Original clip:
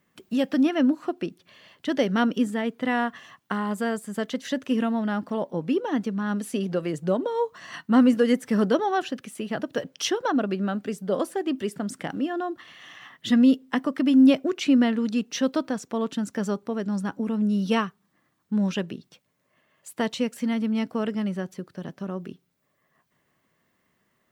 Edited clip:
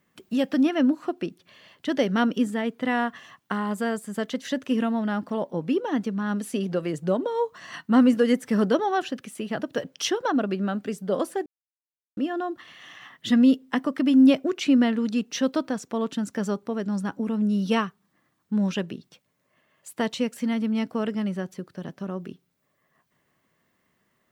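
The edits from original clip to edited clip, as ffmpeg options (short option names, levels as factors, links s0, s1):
-filter_complex "[0:a]asplit=3[s0][s1][s2];[s0]atrim=end=11.46,asetpts=PTS-STARTPTS,afade=t=out:st=11.456:d=0.004:c=hsin[s3];[s1]atrim=start=11.46:end=12.17,asetpts=PTS-STARTPTS,volume=0[s4];[s2]atrim=start=12.17,asetpts=PTS-STARTPTS,afade=t=in:d=0.004:c=hsin[s5];[s3][s4][s5]concat=n=3:v=0:a=1"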